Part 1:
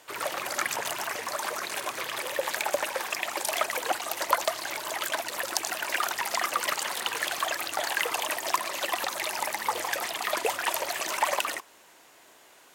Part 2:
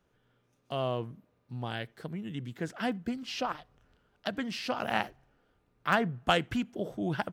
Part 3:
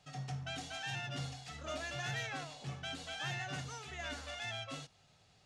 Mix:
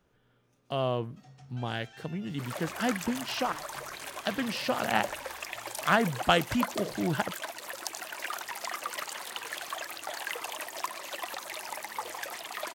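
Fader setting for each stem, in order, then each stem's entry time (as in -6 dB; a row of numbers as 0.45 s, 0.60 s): -8.0 dB, +2.5 dB, -11.5 dB; 2.30 s, 0.00 s, 1.10 s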